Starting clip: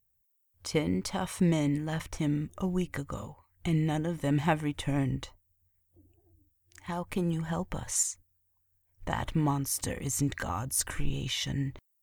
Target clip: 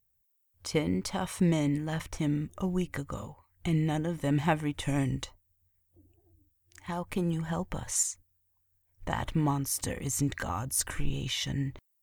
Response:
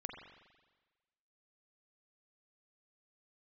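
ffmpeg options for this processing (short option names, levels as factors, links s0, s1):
-filter_complex "[0:a]asplit=3[s0][s1][s2];[s0]afade=t=out:st=4.81:d=0.02[s3];[s1]equalizer=f=7500:t=o:w=2:g=9.5,afade=t=in:st=4.81:d=0.02,afade=t=out:st=5.23:d=0.02[s4];[s2]afade=t=in:st=5.23:d=0.02[s5];[s3][s4][s5]amix=inputs=3:normalize=0"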